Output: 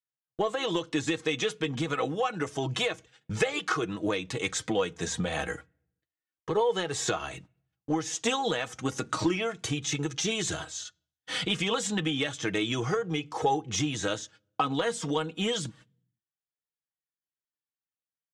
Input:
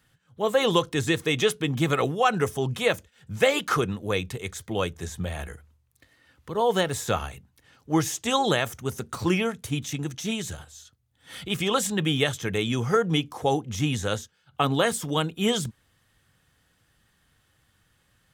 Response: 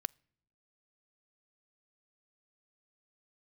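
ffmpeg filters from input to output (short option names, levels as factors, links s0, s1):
-filter_complex "[0:a]highpass=f=180:p=1,agate=range=0.00398:threshold=0.00282:ratio=16:detection=peak,lowpass=f=7700:w=0.5412,lowpass=f=7700:w=1.3066,aecho=1:1:6.3:0.44,acompressor=threshold=0.02:ratio=12,asoftclip=type=tanh:threshold=0.075,flanger=delay=2.2:depth=2.2:regen=47:speed=0.3:shape=triangular,asplit=2[s0][s1];[1:a]atrim=start_sample=2205[s2];[s1][s2]afir=irnorm=-1:irlink=0,volume=4.22[s3];[s0][s3]amix=inputs=2:normalize=0"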